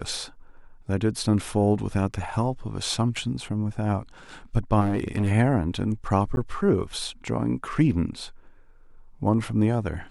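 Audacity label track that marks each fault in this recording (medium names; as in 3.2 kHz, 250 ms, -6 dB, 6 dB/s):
4.800000	5.320000	clipped -19.5 dBFS
6.360000	6.370000	dropout 11 ms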